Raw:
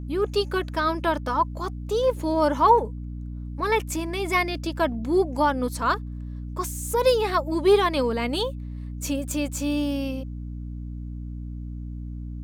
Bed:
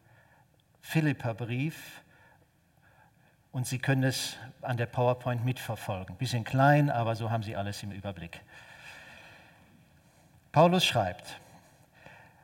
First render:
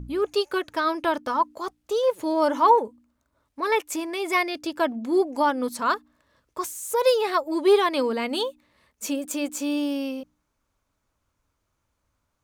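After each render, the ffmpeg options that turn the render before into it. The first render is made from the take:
-af "bandreject=f=60:t=h:w=4,bandreject=f=120:t=h:w=4,bandreject=f=180:t=h:w=4,bandreject=f=240:t=h:w=4,bandreject=f=300:t=h:w=4"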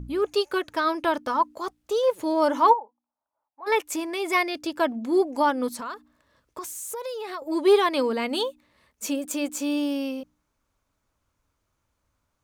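-filter_complex "[0:a]asplit=3[s0][s1][s2];[s0]afade=t=out:st=2.72:d=0.02[s3];[s1]bandpass=f=820:t=q:w=6.8,afade=t=in:st=2.72:d=0.02,afade=t=out:st=3.66:d=0.02[s4];[s2]afade=t=in:st=3.66:d=0.02[s5];[s3][s4][s5]amix=inputs=3:normalize=0,asettb=1/sr,asplit=3[s6][s7][s8];[s6]atrim=end=5.734[s9];[s7]atrim=start=5.73:end=7.42,asetpts=PTS-STARTPTS,afade=t=in:d=0.004:c=qsin,afade=t=out:st=1.686:d=0.004:c=qsin,acompressor=threshold=0.0282:ratio=6:attack=3.2:release=140:knee=1:detection=peak[s10];[s8]atrim=start=7.416[s11];[s9][s10]acrossfade=d=0.004:c1=hsin:c2=qsin[s12];[s12][s11]acrossfade=d=0.004:c1=qsin:c2=hsin"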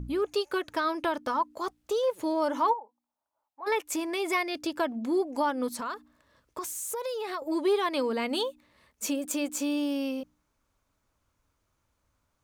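-af "acompressor=threshold=0.0398:ratio=2"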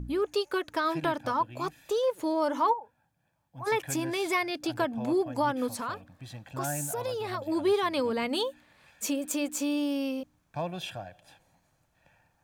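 -filter_complex "[1:a]volume=0.237[s0];[0:a][s0]amix=inputs=2:normalize=0"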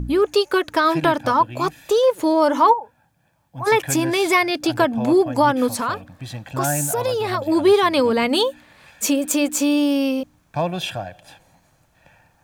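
-af "volume=3.55"

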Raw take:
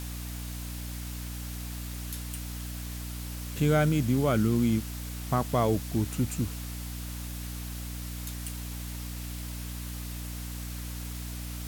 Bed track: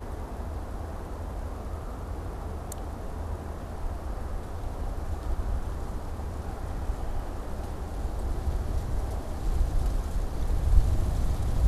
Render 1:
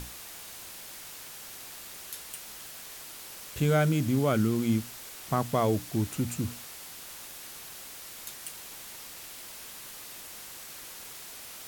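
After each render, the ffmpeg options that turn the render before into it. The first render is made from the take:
-af "bandreject=f=60:t=h:w=6,bandreject=f=120:t=h:w=6,bandreject=f=180:t=h:w=6,bandreject=f=240:t=h:w=6,bandreject=f=300:t=h:w=6"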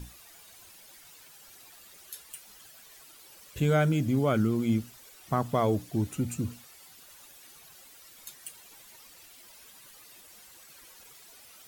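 -af "afftdn=nr=12:nf=-45"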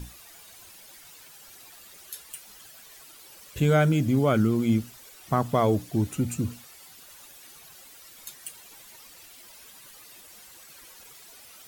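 -af "volume=1.5"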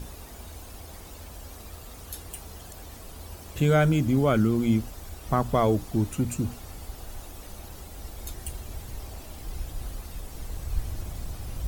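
-filter_complex "[1:a]volume=0.376[s0];[0:a][s0]amix=inputs=2:normalize=0"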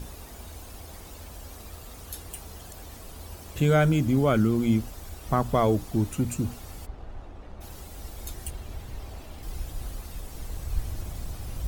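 -filter_complex "[0:a]asplit=3[s0][s1][s2];[s0]afade=t=out:st=6.85:d=0.02[s3];[s1]adynamicsmooth=sensitivity=7.5:basefreq=1700,afade=t=in:st=6.85:d=0.02,afade=t=out:st=7.6:d=0.02[s4];[s2]afade=t=in:st=7.6:d=0.02[s5];[s3][s4][s5]amix=inputs=3:normalize=0,asettb=1/sr,asplit=3[s6][s7][s8];[s6]atrim=end=8.504[s9];[s7]atrim=start=8.5:end=9.43,asetpts=PTS-STARTPTS,afade=t=in:d=0.004:c=qsin,afade=t=out:st=0.926:d=0.004:c=qsin,acrossover=split=4500[s10][s11];[s11]acompressor=threshold=0.002:ratio=4:attack=1:release=60[s12];[s10][s12]amix=inputs=2:normalize=0[s13];[s8]atrim=start=9.426[s14];[s9][s13]acrossfade=d=0.004:c1=hsin:c2=qsin[s15];[s15][s14]acrossfade=d=0.004:c1=qsin:c2=hsin"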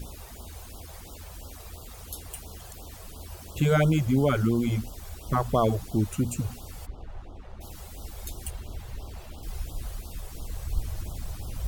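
-af "afftfilt=real='re*(1-between(b*sr/1024,230*pow(2100/230,0.5+0.5*sin(2*PI*2.9*pts/sr))/1.41,230*pow(2100/230,0.5+0.5*sin(2*PI*2.9*pts/sr))*1.41))':imag='im*(1-between(b*sr/1024,230*pow(2100/230,0.5+0.5*sin(2*PI*2.9*pts/sr))/1.41,230*pow(2100/230,0.5+0.5*sin(2*PI*2.9*pts/sr))*1.41))':win_size=1024:overlap=0.75"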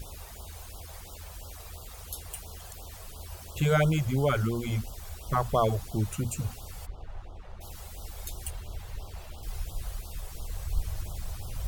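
-af "equalizer=f=270:t=o:w=0.91:g=-9,bandreject=f=60:t=h:w=6,bandreject=f=120:t=h:w=6,bandreject=f=180:t=h:w=6,bandreject=f=240:t=h:w=6"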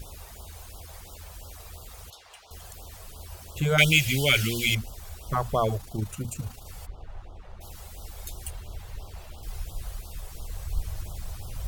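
-filter_complex "[0:a]asettb=1/sr,asplit=3[s0][s1][s2];[s0]atrim=end=2.104[s3];[s1]atrim=start=2.1:end=2.51,asetpts=PTS-STARTPTS,afade=t=in:d=0.004:c=qsin,afade=t=out:st=0.406:d=0.004:c=qsin,acrossover=split=520 5900:gain=0.0708 1 0.0794[s4][s5][s6];[s4][s5][s6]amix=inputs=3:normalize=0[s7];[s2]atrim=start=2.506[s8];[s3][s7]acrossfade=d=0.004:c1=hsin:c2=qsin[s9];[s9][s8]acrossfade=d=0.004:c1=qsin:c2=hsin,asettb=1/sr,asplit=3[s10][s11][s12];[s10]atrim=end=3.784[s13];[s11]atrim=start=3.78:end=4.75,asetpts=PTS-STARTPTS,afade=t=in:d=0.004:c=qsin,afade=t=out:st=0.966:d=0.004:c=qsin,highshelf=f=1700:t=q:w=3:g=13.5[s14];[s12]atrim=start=4.746[s15];[s13][s14]acrossfade=d=0.004:c1=hsin:c2=qsin[s16];[s16][s15]acrossfade=d=0.004:c1=qsin:c2=hsin,asettb=1/sr,asplit=3[s17][s18][s19];[s17]atrim=end=5.774[s20];[s18]atrim=start=5.77:end=6.66,asetpts=PTS-STARTPTS,afade=t=in:d=0.004:c=qsin,afade=t=out:st=0.886:d=0.004:c=qsin,tremolo=f=27:d=0.462[s21];[s19]atrim=start=6.656[s22];[s20][s21]acrossfade=d=0.004:c1=hsin:c2=qsin[s23];[s23][s22]acrossfade=d=0.004:c1=qsin:c2=hsin"

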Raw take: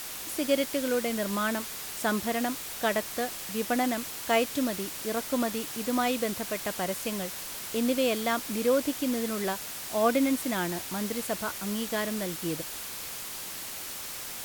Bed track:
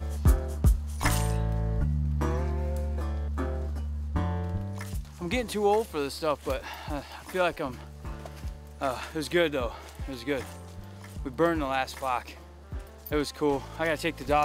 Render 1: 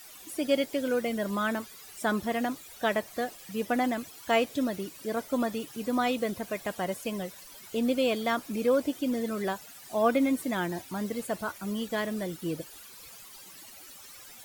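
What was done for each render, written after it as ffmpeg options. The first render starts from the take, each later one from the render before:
-af "afftdn=nr=15:nf=-39"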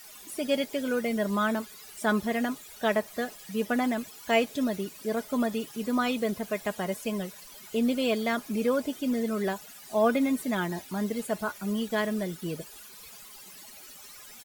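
-af "aecho=1:1:4.8:0.45"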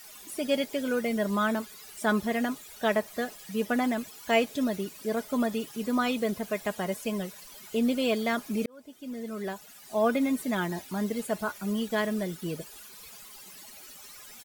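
-filter_complex "[0:a]asplit=2[s0][s1];[s0]atrim=end=8.66,asetpts=PTS-STARTPTS,afade=t=out:st=8.656:d=0.004:c=hsin[s2];[s1]atrim=start=8.66,asetpts=PTS-STARTPTS,afade=t=in:d=2.16:c=qsin[s3];[s2][s3]concat=n=2:v=0:a=1"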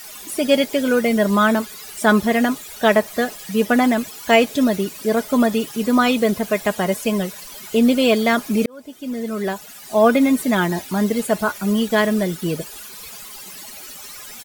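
-af "volume=3.55,alimiter=limit=0.794:level=0:latency=1"

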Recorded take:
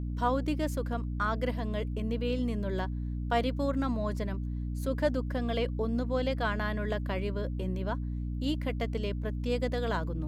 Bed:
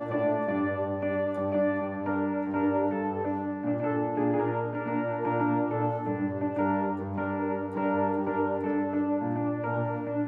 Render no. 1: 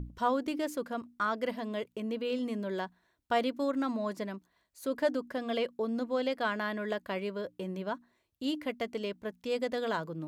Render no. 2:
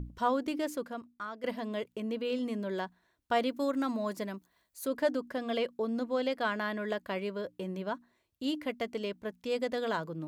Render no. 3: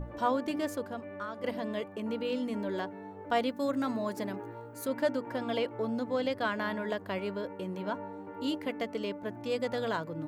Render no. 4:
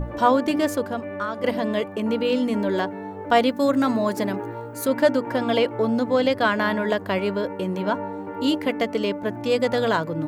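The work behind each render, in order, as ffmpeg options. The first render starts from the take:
-af "bandreject=f=60:t=h:w=6,bandreject=f=120:t=h:w=6,bandreject=f=180:t=h:w=6,bandreject=f=240:t=h:w=6,bandreject=f=300:t=h:w=6"
-filter_complex "[0:a]asettb=1/sr,asplit=3[s0][s1][s2];[s0]atrim=end=3.504[s3];[s1]atrim=start=3.5:end=4.88,asetpts=PTS-STARTPTS,afade=t=in:d=0.004:c=qsin,afade=t=out:st=1.376:d=0.004:c=qsin,highshelf=f=8500:g=10[s4];[s2]atrim=start=4.876[s5];[s3][s4]acrossfade=d=0.004:c1=hsin:c2=qsin[s6];[s6][s5]acrossfade=d=0.004:c1=qsin:c2=hsin,asplit=2[s7][s8];[s7]atrim=end=1.44,asetpts=PTS-STARTPTS,afade=t=out:st=0.74:d=0.7:c=qua:silence=0.298538[s9];[s8]atrim=start=1.44,asetpts=PTS-STARTPTS,afade=t=in:d=0.004:c=hsin:silence=0.298538[s10];[s9][s10]concat=n=2:v=0:a=1"
-filter_complex "[1:a]volume=0.178[s0];[0:a][s0]amix=inputs=2:normalize=0"
-af "volume=3.55"

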